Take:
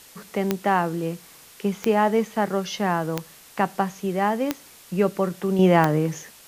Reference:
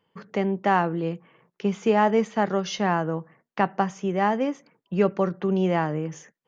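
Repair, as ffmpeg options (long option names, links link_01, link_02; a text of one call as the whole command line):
ffmpeg -i in.wav -af "adeclick=threshold=4,afwtdn=0.0045,asetnsamples=nb_out_samples=441:pad=0,asendcmd='5.59 volume volume -6.5dB',volume=0dB" out.wav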